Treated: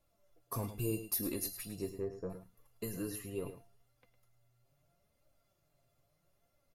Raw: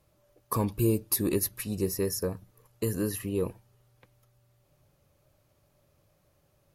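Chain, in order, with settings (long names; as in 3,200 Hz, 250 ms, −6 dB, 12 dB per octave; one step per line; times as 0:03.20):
0:01.89–0:02.30: low-pass filter 1,300 Hz 12 dB per octave
tuned comb filter 690 Hz, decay 0.32 s, mix 90%
flanger 0.76 Hz, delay 3.3 ms, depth 5 ms, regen +35%
on a send: single-tap delay 107 ms −11.5 dB
on the sum: level +12 dB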